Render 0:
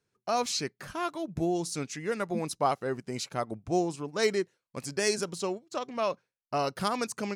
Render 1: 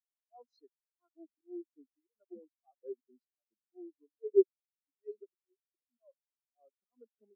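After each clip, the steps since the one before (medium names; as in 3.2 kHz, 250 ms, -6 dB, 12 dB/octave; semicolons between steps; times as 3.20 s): steep high-pass 220 Hz 48 dB/octave; slow attack 212 ms; spectral contrast expander 4:1; trim +3.5 dB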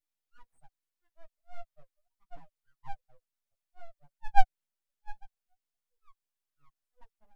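peaking EQ 830 Hz -10.5 dB 0.47 oct; full-wave rectifier; chorus voices 6, 0.45 Hz, delay 10 ms, depth 3.8 ms; trim +6.5 dB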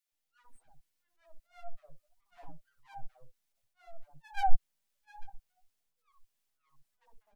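transient shaper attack -7 dB, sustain +4 dB; three bands offset in time highs, mids, lows 60/120 ms, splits 380/1200 Hz; trim +4 dB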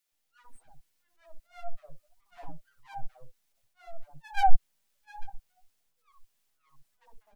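saturation -10.5 dBFS, distortion -19 dB; trim +6.5 dB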